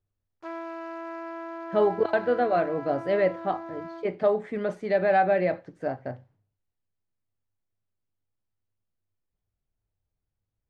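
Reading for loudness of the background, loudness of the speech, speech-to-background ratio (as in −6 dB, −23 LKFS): −38.5 LKFS, −26.0 LKFS, 12.5 dB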